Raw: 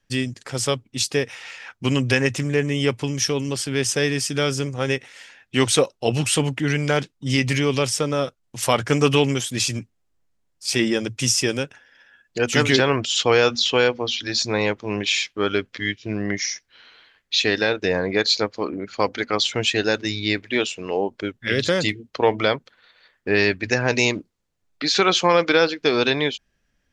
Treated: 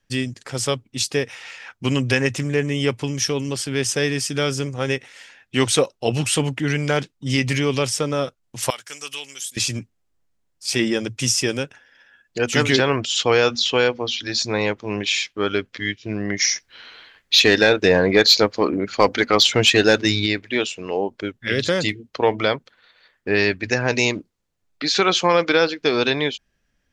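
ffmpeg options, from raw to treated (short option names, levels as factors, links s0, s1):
-filter_complex "[0:a]asettb=1/sr,asplit=3[s0][s1][s2];[s0]atrim=end=8.704[s3];[s1]atrim=start=8.7:end=9.57,asetpts=PTS-STARTPTS,afade=t=in:d=0.004:c=qsin,afade=t=out:st=0.866:d=0.004:c=qsin,aderivative[s4];[s2]atrim=start=9.566[s5];[s3][s4]acrossfade=d=0.004:c1=hsin:c2=qsin[s6];[s6][s5]acrossfade=d=0.004:c1=qsin:c2=hsin,asplit=3[s7][s8][s9];[s7]afade=t=out:st=16.39:d=0.02[s10];[s8]acontrast=81,afade=t=in:st=16.39:d=0.02,afade=t=out:st=20.25:d=0.02[s11];[s9]afade=t=in:st=20.25:d=0.02[s12];[s10][s11][s12]amix=inputs=3:normalize=0"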